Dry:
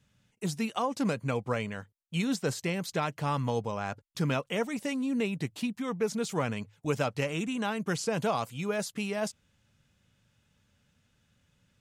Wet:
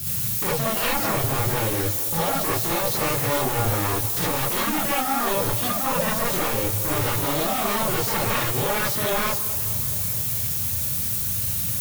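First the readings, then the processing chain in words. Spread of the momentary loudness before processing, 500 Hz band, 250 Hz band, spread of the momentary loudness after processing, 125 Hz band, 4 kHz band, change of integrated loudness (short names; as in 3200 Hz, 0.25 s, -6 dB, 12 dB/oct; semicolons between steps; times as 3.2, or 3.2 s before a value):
5 LU, +6.0 dB, +2.0 dB, 1 LU, +7.5 dB, +11.5 dB, +10.0 dB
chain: HPF 64 Hz 24 dB/oct; RIAA curve playback; compressor 4:1, threshold -39 dBFS, peak gain reduction 18.5 dB; hard clip -34.5 dBFS, distortion -16 dB; added noise violet -51 dBFS; sine folder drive 13 dB, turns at -30.5 dBFS; on a send: tape echo 0.213 s, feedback 80%, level -13 dB, low-pass 2400 Hz; on the sum: non-linear reverb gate 90 ms rising, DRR -6.5 dB; gain +4 dB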